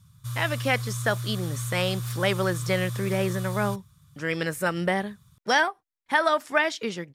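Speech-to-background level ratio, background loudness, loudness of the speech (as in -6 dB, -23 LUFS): 6.5 dB, -33.0 LUFS, -26.5 LUFS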